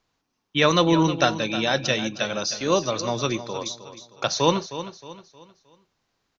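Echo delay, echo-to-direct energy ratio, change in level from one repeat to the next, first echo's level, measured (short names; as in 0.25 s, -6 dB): 0.312 s, -12.0 dB, -8.5 dB, -12.5 dB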